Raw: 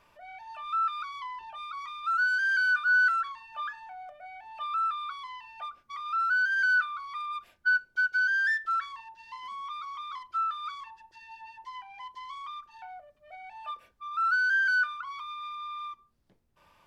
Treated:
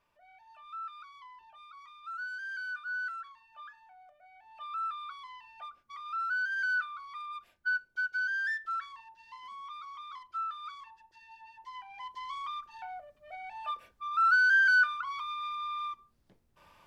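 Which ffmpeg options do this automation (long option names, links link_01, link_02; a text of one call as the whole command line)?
ffmpeg -i in.wav -af "volume=2dB,afade=type=in:start_time=4.3:duration=0.55:silence=0.446684,afade=type=in:start_time=11.51:duration=0.83:silence=0.398107" out.wav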